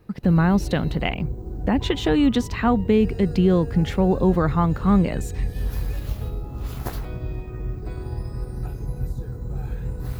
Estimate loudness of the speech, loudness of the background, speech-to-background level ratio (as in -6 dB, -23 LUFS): -21.0 LUFS, -31.5 LUFS, 10.5 dB